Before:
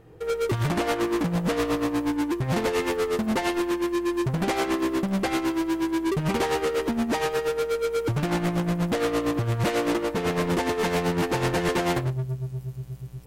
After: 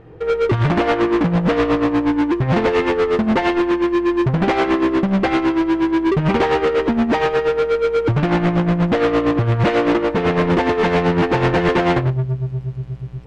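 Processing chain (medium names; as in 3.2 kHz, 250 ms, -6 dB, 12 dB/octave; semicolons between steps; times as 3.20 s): low-pass 3 kHz 12 dB/octave; trim +8.5 dB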